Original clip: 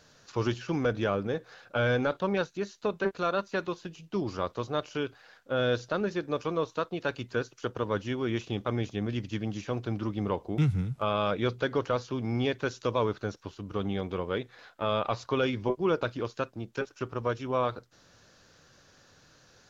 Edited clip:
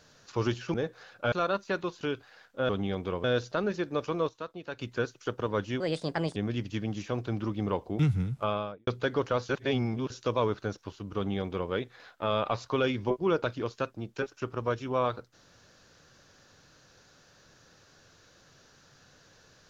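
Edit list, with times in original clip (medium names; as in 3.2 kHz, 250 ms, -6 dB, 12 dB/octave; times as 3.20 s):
0.74–1.25 s: delete
1.83–3.16 s: delete
3.85–4.93 s: delete
6.66–7.16 s: gain -8 dB
8.17–8.95 s: speed 139%
11.00–11.46 s: studio fade out
12.08–12.69 s: reverse
13.75–14.30 s: copy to 5.61 s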